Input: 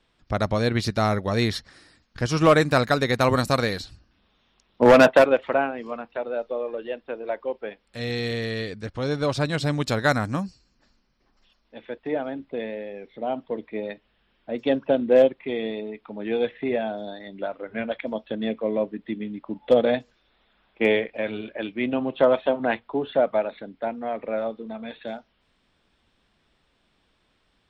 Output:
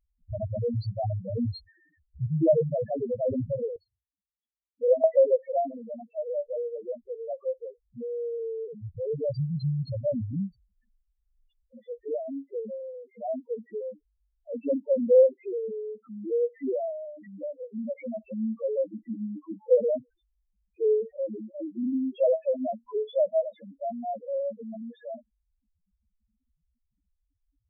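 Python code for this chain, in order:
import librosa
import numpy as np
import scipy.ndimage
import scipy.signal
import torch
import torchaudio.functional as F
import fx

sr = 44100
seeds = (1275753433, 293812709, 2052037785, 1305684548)

y = fx.spec_topn(x, sr, count=1)
y = fx.vowel_filter(y, sr, vowel='e', at=(3.76, 5.04))
y = y * 10.0 ** (4.0 / 20.0)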